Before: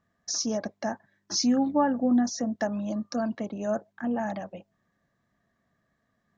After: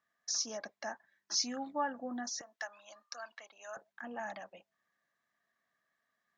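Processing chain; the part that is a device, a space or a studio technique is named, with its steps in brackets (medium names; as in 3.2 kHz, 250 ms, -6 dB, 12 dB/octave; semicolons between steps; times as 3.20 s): filter by subtraction (in parallel: low-pass 1.8 kHz 12 dB/octave + polarity flip); 2.41–3.77 s: on the sum: high-pass 970 Hz 12 dB/octave; trim -5 dB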